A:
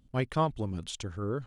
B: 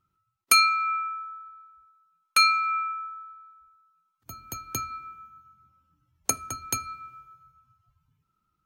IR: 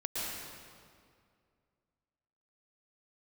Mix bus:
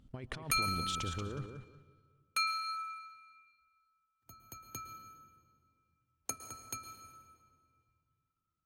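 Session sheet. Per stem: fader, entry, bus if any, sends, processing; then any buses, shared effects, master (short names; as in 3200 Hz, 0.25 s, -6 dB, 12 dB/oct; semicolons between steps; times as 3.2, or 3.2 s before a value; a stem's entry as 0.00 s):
-4.5 dB, 0.00 s, send -21.5 dB, echo send -7 dB, high shelf 8700 Hz -8.5 dB; negative-ratio compressor -37 dBFS, ratio -1
-15.5 dB, 0.00 s, send -9.5 dB, no echo send, dry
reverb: on, RT60 2.2 s, pre-delay 0.105 s
echo: feedback echo 0.183 s, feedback 23%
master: dry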